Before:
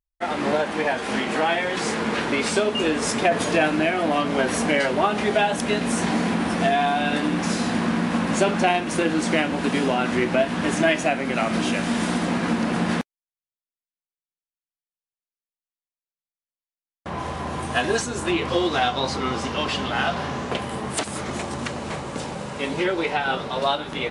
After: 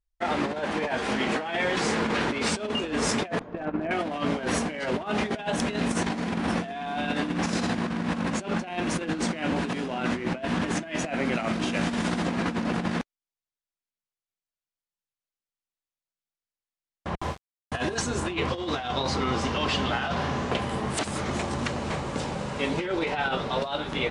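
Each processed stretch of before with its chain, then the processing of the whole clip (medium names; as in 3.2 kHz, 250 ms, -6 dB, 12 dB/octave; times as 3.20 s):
3.39–3.91 s: low-pass 1.3 kHz + gate -23 dBFS, range -17 dB + overload inside the chain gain 13.5 dB
17.15–17.72 s: high-pass 52 Hz 24 dB/octave + gate with hold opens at -18 dBFS, closes at -27 dBFS + small samples zeroed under -38.5 dBFS
whole clip: low-pass 8.1 kHz 12 dB/octave; bass shelf 63 Hz +10 dB; compressor with a negative ratio -24 dBFS, ratio -0.5; trim -3 dB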